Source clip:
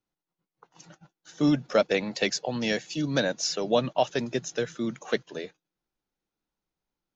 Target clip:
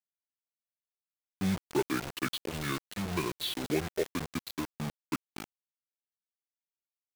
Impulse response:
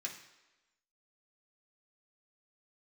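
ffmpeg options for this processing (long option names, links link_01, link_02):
-filter_complex "[0:a]aecho=1:1:215|430:0.075|0.0247,asplit=2[link_01][link_02];[1:a]atrim=start_sample=2205,asetrate=34839,aresample=44100,lowshelf=frequency=75:gain=10.5[link_03];[link_02][link_03]afir=irnorm=-1:irlink=0,volume=-19dB[link_04];[link_01][link_04]amix=inputs=2:normalize=0,asetrate=28595,aresample=44100,atempo=1.54221,lowshelf=frequency=75:gain=-5,acrusher=bits=4:mix=0:aa=0.000001,volume=-7dB"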